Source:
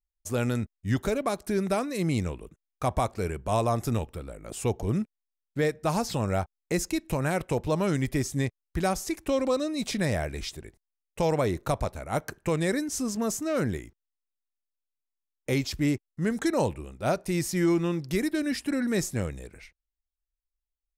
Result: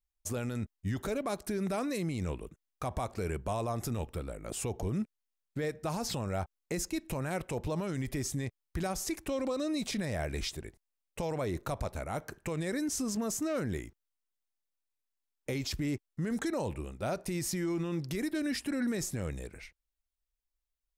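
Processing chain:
brickwall limiter −25.5 dBFS, peak gain reduction 10.5 dB

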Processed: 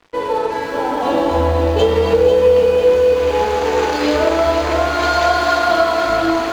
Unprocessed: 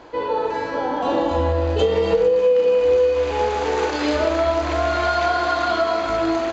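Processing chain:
0:04.99–0:05.59: high-shelf EQ 5,700 Hz +9 dB
dead-zone distortion −39 dBFS
feedback echo at a low word length 494 ms, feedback 55%, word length 8 bits, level −7 dB
level +4.5 dB

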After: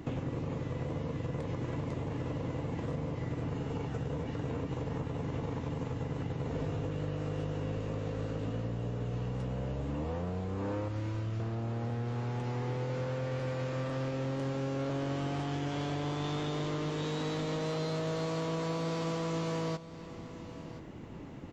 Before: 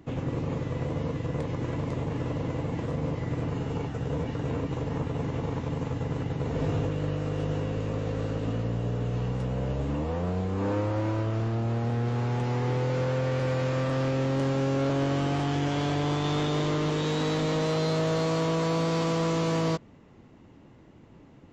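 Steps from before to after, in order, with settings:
0:10.88–0:11.40: parametric band 660 Hz −10.5 dB 2.3 octaves
downward compressor 6 to 1, threshold −40 dBFS, peak gain reduction 15 dB
on a send: single-tap delay 1,026 ms −15 dB
on the sum: level +6.5 dB

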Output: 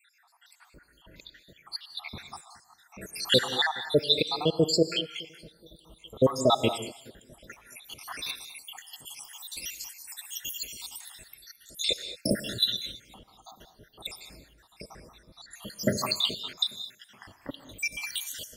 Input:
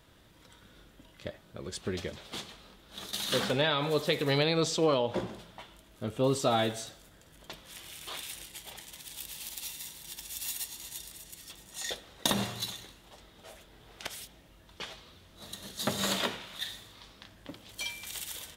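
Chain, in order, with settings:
time-frequency cells dropped at random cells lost 83%
dynamic equaliser 3,400 Hz, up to +6 dB, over −54 dBFS, Q 0.87
on a send: delay with a low-pass on its return 421 ms, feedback 47%, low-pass 480 Hz, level −23 dB
on the sum: reverb whose tail is shaped and stops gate 240 ms rising, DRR 10.5 dB
level +7.5 dB

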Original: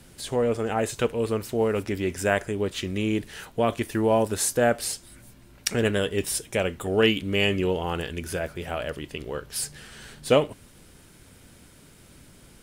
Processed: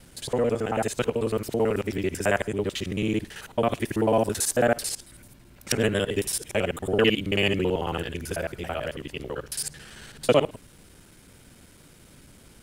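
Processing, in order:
reversed piece by piece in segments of 55 ms

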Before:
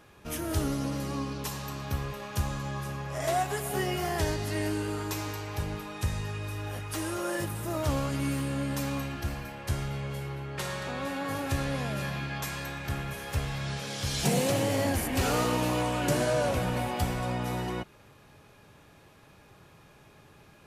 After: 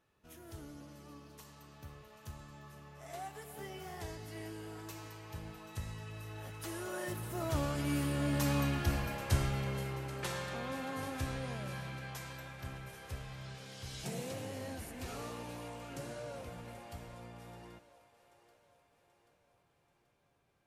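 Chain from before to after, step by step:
source passing by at 0:09.01, 15 m/s, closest 12 metres
echo with a time of its own for lows and highs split 390 Hz, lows 99 ms, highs 783 ms, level −15 dB
level +1 dB

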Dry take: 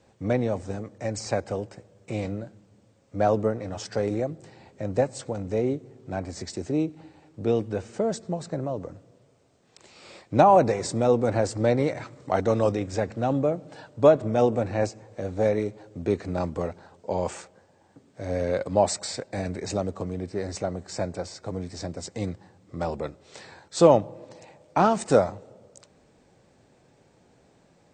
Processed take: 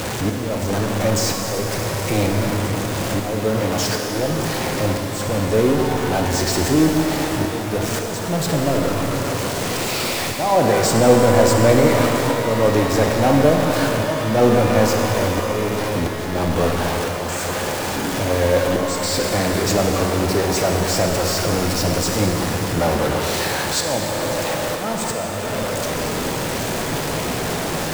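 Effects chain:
converter with a step at zero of −25 dBFS
volume swells 443 ms
reverb with rising layers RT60 3.5 s, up +12 semitones, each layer −8 dB, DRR 1.5 dB
level +5 dB

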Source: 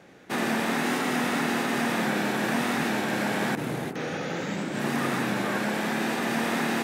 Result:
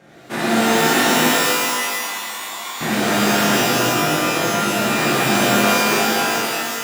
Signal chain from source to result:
fade-out on the ending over 1.29 s
0:01.29–0:02.81: pair of resonant band-passes 1,900 Hz, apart 1.7 octaves
reverb with rising layers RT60 1.7 s, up +12 semitones, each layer −2 dB, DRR −6.5 dB

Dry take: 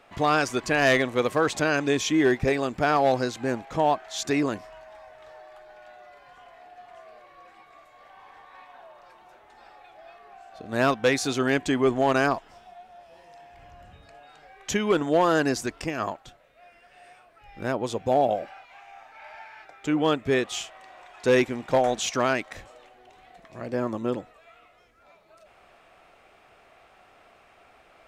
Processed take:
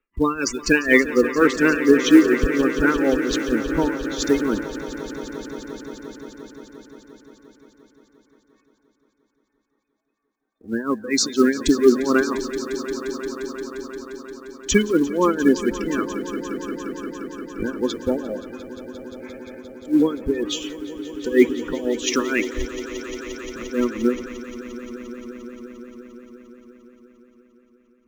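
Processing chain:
low-pass filter 7,100 Hz 12 dB per octave
notch filter 590 Hz, Q 12
gate on every frequency bin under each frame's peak −15 dB strong
noise gate −45 dBFS, range −17 dB
low-shelf EQ 74 Hz +11.5 dB
in parallel at −1.5 dB: downward compressor 12 to 1, threshold −31 dBFS, peak gain reduction 15.5 dB
on the sum: phaser with its sweep stopped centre 300 Hz, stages 4
amplitude tremolo 4.2 Hz, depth 84%
floating-point word with a short mantissa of 4 bits
on a send: echo that builds up and dies away 175 ms, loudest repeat 5, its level −13.5 dB
on the sum: multiband upward and downward expander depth 40%
level +8 dB

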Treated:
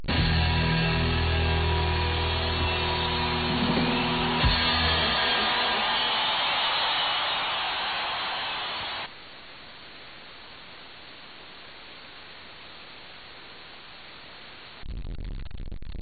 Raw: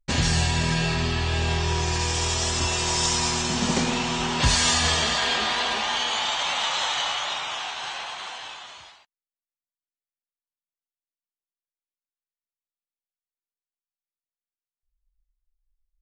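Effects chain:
converter with a step at zero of −23 dBFS
linear-phase brick-wall low-pass 4,500 Hz
level −3.5 dB

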